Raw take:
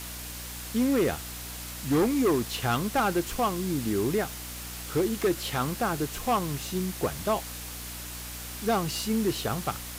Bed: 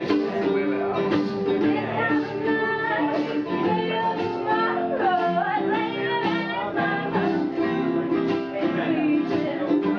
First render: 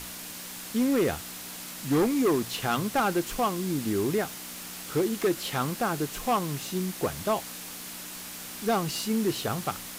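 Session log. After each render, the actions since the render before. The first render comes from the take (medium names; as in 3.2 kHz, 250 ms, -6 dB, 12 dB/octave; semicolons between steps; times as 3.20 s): hum notches 60/120 Hz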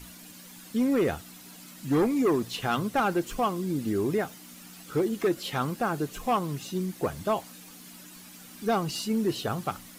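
noise reduction 11 dB, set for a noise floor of -40 dBFS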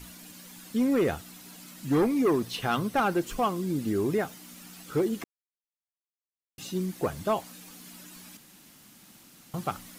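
1.99–3.15 s: band-stop 7.1 kHz; 5.24–6.58 s: mute; 8.37–9.54 s: room tone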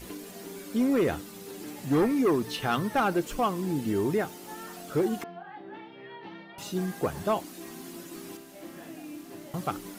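add bed -20.5 dB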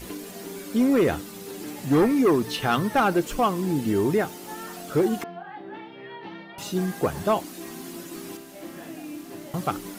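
trim +4.5 dB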